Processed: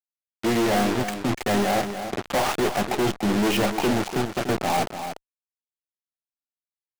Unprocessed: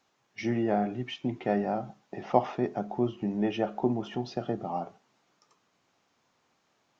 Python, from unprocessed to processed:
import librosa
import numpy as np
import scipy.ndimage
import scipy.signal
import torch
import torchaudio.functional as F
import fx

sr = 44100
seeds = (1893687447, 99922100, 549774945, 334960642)

y = fx.env_lowpass(x, sr, base_hz=510.0, full_db=-23.0)
y = fx.low_shelf(y, sr, hz=260.0, db=-6.0)
y = fx.fuzz(y, sr, gain_db=45.0, gate_db=-39.0)
y = fx.power_curve(y, sr, exponent=1.4, at=(1.71, 2.28))
y = 10.0 ** (-25.0 / 20.0) * np.tanh(y / 10.0 ** (-25.0 / 20.0))
y = y + 10.0 ** (-9.0 / 20.0) * np.pad(y, (int(292 * sr / 1000.0), 0))[:len(y)]
y = F.gain(torch.from_numpy(y), 5.5).numpy()